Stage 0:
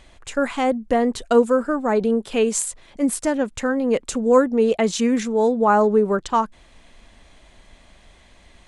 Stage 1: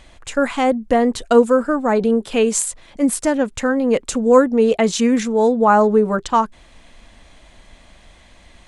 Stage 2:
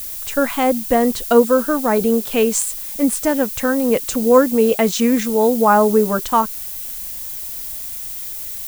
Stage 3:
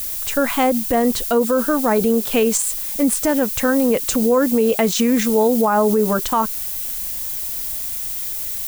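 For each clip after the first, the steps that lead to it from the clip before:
band-stop 400 Hz, Q 12; trim +3.5 dB
added noise violet -29 dBFS
peak limiter -11 dBFS, peak gain reduction 10 dB; trim +3 dB

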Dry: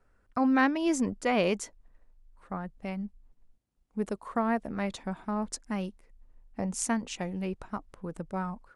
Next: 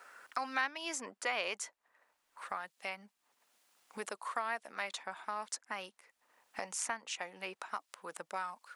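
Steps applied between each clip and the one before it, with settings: high-pass 1 kHz 12 dB/octave; three bands compressed up and down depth 70%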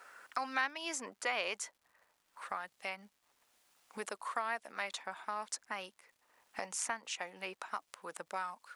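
crackle 250 per s -61 dBFS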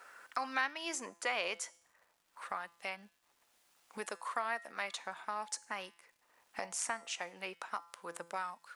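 feedback comb 170 Hz, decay 0.6 s, harmonics all, mix 50%; trim +5.5 dB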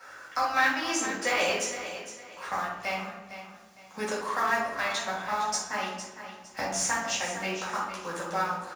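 block-companded coder 5-bit; feedback delay 458 ms, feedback 30%, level -11.5 dB; reverberation RT60 1.2 s, pre-delay 3 ms, DRR -7 dB

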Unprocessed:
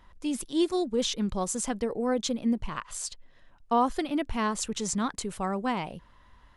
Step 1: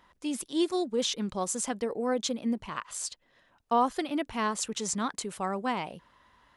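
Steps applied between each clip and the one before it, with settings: high-pass 250 Hz 6 dB/octave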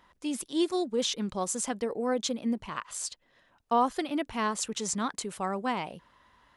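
no audible change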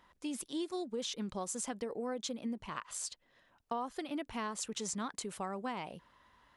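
compression 4:1, threshold -32 dBFS, peak gain reduction 10.5 dB; trim -3.5 dB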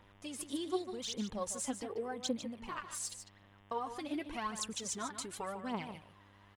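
phaser 0.87 Hz, delay 3.8 ms, feedback 68%; mains buzz 100 Hz, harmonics 36, -61 dBFS -4 dB/octave; delay 149 ms -10 dB; trim -3 dB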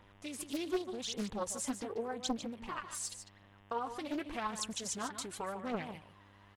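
loudspeaker Doppler distortion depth 0.66 ms; trim +1 dB

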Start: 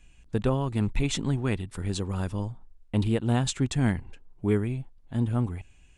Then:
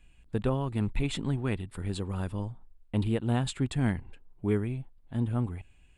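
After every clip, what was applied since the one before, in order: peaking EQ 6 kHz -13 dB 0.44 oct; trim -3 dB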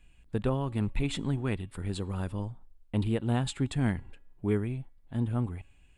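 feedback comb 280 Hz, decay 0.87 s, mix 30%; trim +2.5 dB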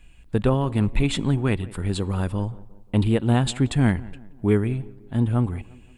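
tape echo 175 ms, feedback 54%, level -18 dB, low-pass 1.2 kHz; trim +8.5 dB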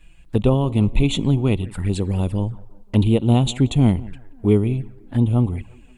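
touch-sensitive flanger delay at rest 7.1 ms, full sweep at -20 dBFS; trim +4 dB

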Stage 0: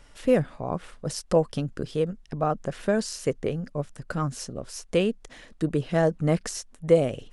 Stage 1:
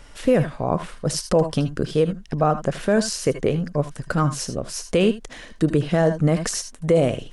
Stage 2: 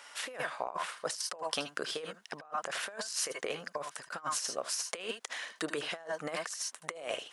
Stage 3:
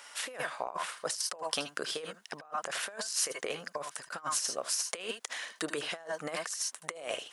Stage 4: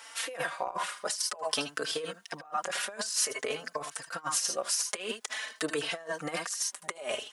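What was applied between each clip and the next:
on a send at -11.5 dB: reverberation, pre-delay 74 ms; on the sum: peak limiter -16 dBFS, peak gain reduction 9.5 dB; trim +7.5 dB
Chebyshev high-pass 970 Hz, order 2; compressor with a negative ratio -33 dBFS, ratio -0.5; trim -3 dB
treble shelf 6.5 kHz +6 dB
endless flanger 4 ms +0.51 Hz; trim +5.5 dB

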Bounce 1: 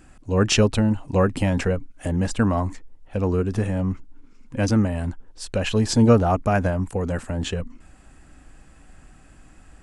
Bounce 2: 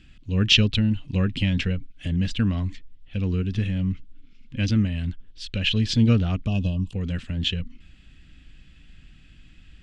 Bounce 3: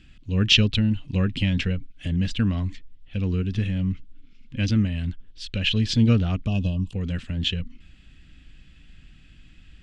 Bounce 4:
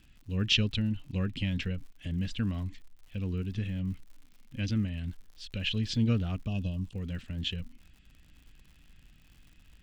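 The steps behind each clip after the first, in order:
FFT filter 180 Hz 0 dB, 860 Hz -20 dB, 3.3 kHz +10 dB, 9.4 kHz -19 dB; time-frequency box 6.47–6.92 s, 1.2–2.5 kHz -29 dB
no audible change
crackle 120 per s -40 dBFS; trim -8.5 dB

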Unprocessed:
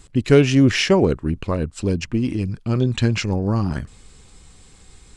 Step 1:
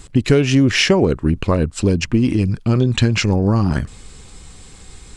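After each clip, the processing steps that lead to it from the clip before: compression 5:1, threshold -18 dBFS, peak gain reduction 10 dB; trim +7.5 dB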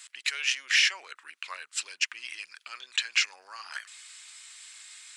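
peak limiter -10.5 dBFS, peak gain reduction 8.5 dB; ladder high-pass 1.4 kHz, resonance 25%; trim +3.5 dB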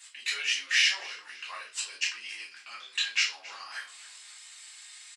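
frequency-shifting echo 272 ms, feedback 46%, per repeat -68 Hz, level -19.5 dB; reverberation RT60 0.35 s, pre-delay 3 ms, DRR -7 dB; trim -8 dB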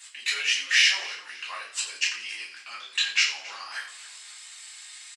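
frequency-shifting echo 87 ms, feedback 36%, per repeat +44 Hz, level -13.5 dB; trim +4 dB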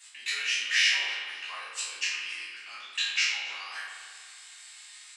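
spectral sustain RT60 0.54 s; spring tank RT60 1.8 s, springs 46 ms, chirp 40 ms, DRR 3 dB; trim -6.5 dB

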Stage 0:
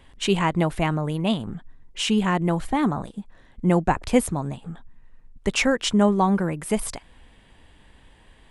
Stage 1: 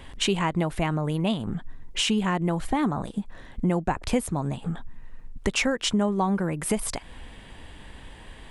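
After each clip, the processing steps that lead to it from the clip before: compression 3:1, threshold -34 dBFS, peak gain reduction 16 dB; trim +8.5 dB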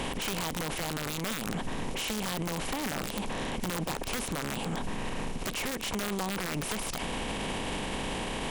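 spectral levelling over time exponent 0.4; integer overflow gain 11.5 dB; peak limiter -23 dBFS, peak gain reduction 11.5 dB; trim -2 dB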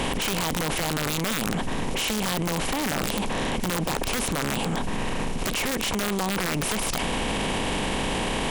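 level flattener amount 70%; trim +4.5 dB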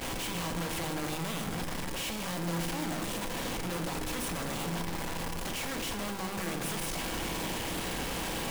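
one-bit comparator; peak limiter -36 dBFS, peak gain reduction 19.5 dB; reverberation RT60 1.9 s, pre-delay 3 ms, DRR 4.5 dB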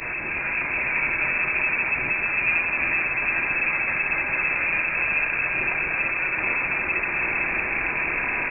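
backward echo that repeats 225 ms, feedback 70%, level -5 dB; delay 828 ms -4.5 dB; frequency inversion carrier 2.6 kHz; trim +6.5 dB

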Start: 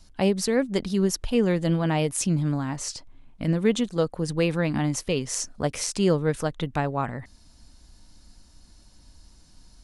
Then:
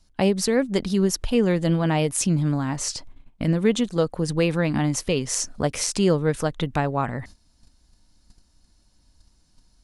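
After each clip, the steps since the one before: gate -45 dBFS, range -14 dB; in parallel at +0.5 dB: compression, threshold -32 dBFS, peak gain reduction 15.5 dB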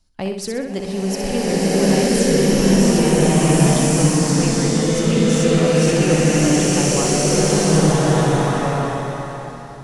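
in parallel at -4 dB: hard clipper -18 dBFS, distortion -12 dB; on the sum: flutter echo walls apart 10.8 m, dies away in 0.56 s; swelling reverb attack 1780 ms, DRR -11 dB; trim -8 dB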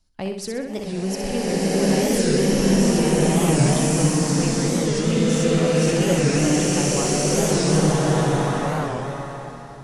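warped record 45 rpm, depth 160 cents; trim -3.5 dB

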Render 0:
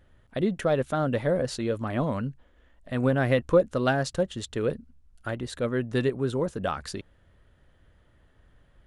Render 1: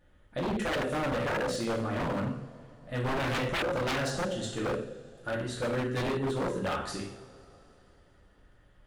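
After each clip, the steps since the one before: two-slope reverb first 0.64 s, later 3.5 s, from -22 dB, DRR -5 dB; wavefolder -18.5 dBFS; trim -6.5 dB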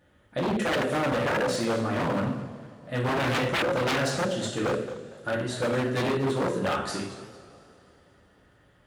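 high-pass 92 Hz 12 dB/octave; modulated delay 228 ms, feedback 31%, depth 206 cents, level -15 dB; trim +4.5 dB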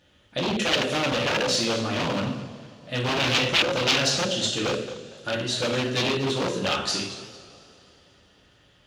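high-order bell 4.1 kHz +11.5 dB

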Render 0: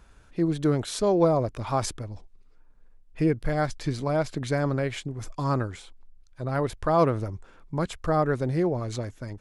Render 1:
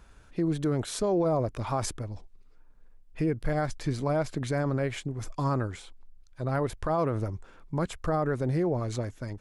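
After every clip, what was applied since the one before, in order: dynamic bell 4 kHz, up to -4 dB, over -46 dBFS, Q 0.93; peak limiter -19 dBFS, peak gain reduction 9 dB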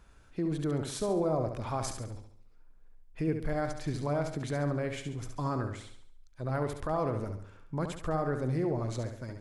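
flutter echo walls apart 11.9 m, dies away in 0.58 s; trim -4.5 dB

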